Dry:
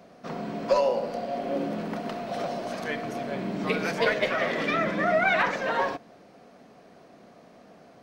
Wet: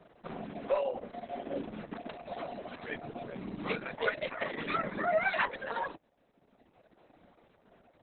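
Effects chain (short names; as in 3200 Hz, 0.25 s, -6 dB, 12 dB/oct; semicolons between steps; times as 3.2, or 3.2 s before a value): reverb removal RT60 1.4 s; gain -5.5 dB; Opus 6 kbps 48000 Hz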